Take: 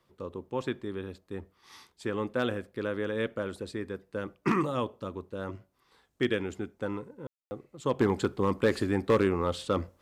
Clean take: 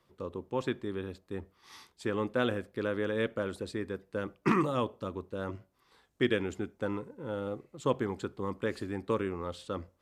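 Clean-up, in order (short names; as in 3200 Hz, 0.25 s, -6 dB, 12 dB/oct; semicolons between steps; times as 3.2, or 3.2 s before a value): clip repair -16 dBFS; room tone fill 7.27–7.51; gain correction -8.5 dB, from 7.99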